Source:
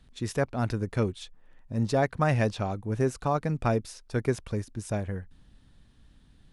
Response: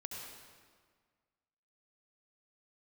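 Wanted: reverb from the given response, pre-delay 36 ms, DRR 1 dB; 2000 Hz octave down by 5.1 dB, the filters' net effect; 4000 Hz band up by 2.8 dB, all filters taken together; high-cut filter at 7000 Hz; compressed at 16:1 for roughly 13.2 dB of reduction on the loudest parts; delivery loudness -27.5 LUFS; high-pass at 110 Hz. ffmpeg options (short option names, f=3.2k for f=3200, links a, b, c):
-filter_complex "[0:a]highpass=110,lowpass=7k,equalizer=f=2k:t=o:g=-8,equalizer=f=4k:t=o:g=6,acompressor=threshold=-34dB:ratio=16,asplit=2[a][b];[1:a]atrim=start_sample=2205,adelay=36[c];[b][c]afir=irnorm=-1:irlink=0,volume=0.5dB[d];[a][d]amix=inputs=2:normalize=0,volume=10.5dB"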